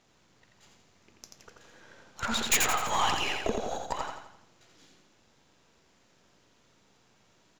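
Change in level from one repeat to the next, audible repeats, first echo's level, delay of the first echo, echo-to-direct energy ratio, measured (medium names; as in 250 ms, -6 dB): -6.5 dB, 5, -4.0 dB, 85 ms, -3.0 dB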